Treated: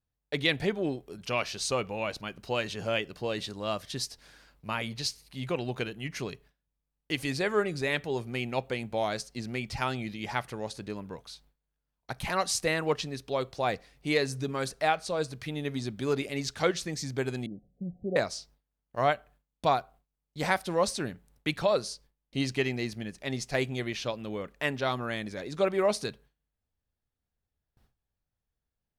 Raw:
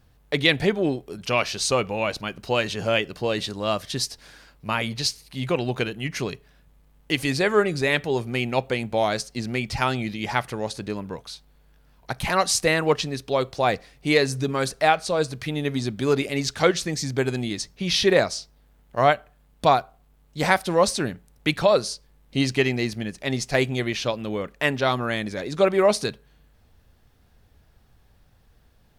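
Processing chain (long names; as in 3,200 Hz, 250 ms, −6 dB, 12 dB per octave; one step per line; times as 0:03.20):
noise gate with hold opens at −44 dBFS
0:17.46–0:18.16: Chebyshev low-pass with heavy ripple 760 Hz, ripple 9 dB
level −7.5 dB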